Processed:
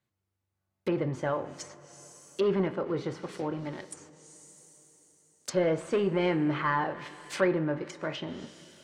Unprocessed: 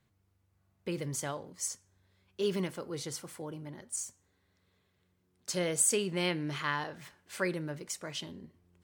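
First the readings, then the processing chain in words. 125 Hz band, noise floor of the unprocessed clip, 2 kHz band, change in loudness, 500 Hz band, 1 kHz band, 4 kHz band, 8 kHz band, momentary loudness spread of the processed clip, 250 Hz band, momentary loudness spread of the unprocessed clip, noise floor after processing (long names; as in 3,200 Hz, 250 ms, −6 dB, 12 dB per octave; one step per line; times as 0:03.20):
+4.5 dB, −75 dBFS, +2.5 dB, +4.0 dB, +7.0 dB, +7.5 dB, −3.0 dB, −12.5 dB, 17 LU, +7.0 dB, 17 LU, −84 dBFS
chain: leveller curve on the samples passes 3
low-shelf EQ 120 Hz −9.5 dB
coupled-rooms reverb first 0.26 s, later 4 s, from −19 dB, DRR 8.5 dB
treble cut that deepens with the level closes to 1,600 Hz, closed at −25 dBFS
level −2 dB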